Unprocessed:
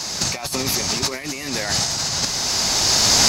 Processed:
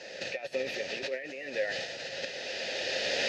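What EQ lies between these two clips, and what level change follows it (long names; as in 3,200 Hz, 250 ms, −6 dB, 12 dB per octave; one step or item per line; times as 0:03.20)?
dynamic equaliser 3,500 Hz, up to +7 dB, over −31 dBFS, Q 1.2
formant filter e
high-shelf EQ 5,500 Hz −10.5 dB
+3.0 dB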